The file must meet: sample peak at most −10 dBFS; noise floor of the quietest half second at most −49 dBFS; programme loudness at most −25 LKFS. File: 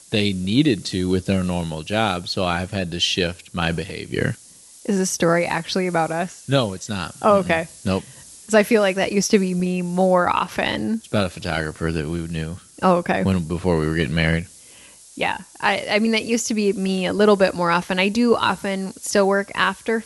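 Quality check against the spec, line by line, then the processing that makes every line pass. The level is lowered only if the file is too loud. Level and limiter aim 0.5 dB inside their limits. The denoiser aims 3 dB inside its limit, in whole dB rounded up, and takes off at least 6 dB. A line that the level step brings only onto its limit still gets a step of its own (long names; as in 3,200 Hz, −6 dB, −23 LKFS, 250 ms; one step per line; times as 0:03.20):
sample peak −3.0 dBFS: out of spec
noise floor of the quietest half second −46 dBFS: out of spec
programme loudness −21.0 LKFS: out of spec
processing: level −4.5 dB
brickwall limiter −10.5 dBFS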